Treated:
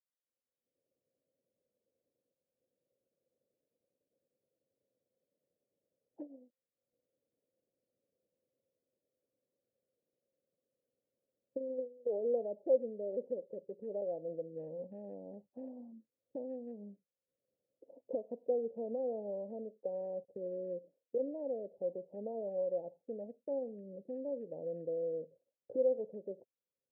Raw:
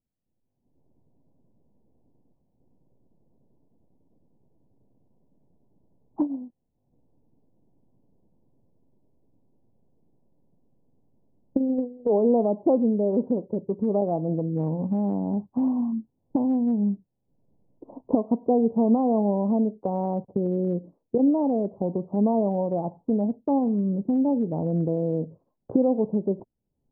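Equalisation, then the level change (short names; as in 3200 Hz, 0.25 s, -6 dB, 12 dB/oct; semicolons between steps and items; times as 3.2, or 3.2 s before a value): vowel filter e; bell 71 Hz +6 dB 2.1 oct; -5.0 dB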